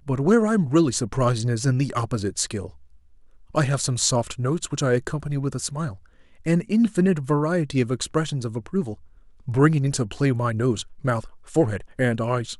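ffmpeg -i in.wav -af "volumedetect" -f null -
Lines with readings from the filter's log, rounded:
mean_volume: -23.2 dB
max_volume: -4.0 dB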